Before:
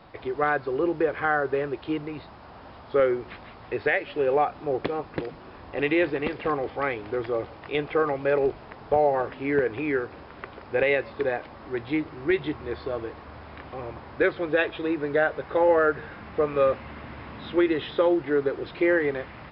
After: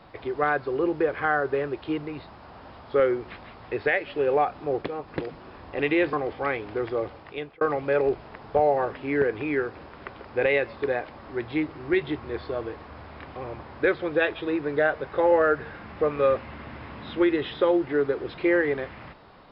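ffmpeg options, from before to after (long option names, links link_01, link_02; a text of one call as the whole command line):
ffmpeg -i in.wav -filter_complex "[0:a]asplit=5[link_01][link_02][link_03][link_04][link_05];[link_01]atrim=end=4.822[link_06];[link_02]atrim=start=4.818:end=5.082,asetpts=PTS-STARTPTS,volume=-3.5dB[link_07];[link_03]atrim=start=5.078:end=6.132[link_08];[link_04]atrim=start=6.498:end=7.98,asetpts=PTS-STARTPTS,afade=type=out:start_time=0.772:duration=0.71:curve=qsin[link_09];[link_05]atrim=start=7.98,asetpts=PTS-STARTPTS,afade=type=in:duration=0.004:curve=hsin[link_10];[link_06][link_07]acrossfade=duration=0.004:curve1=hsin:curve2=hsin[link_11];[link_11][link_08]acrossfade=duration=0.004:curve1=hsin:curve2=hsin[link_12];[link_09][link_10]concat=n=2:v=0:a=1[link_13];[link_12][link_13]acrossfade=duration=0.004:curve1=hsin:curve2=hsin" out.wav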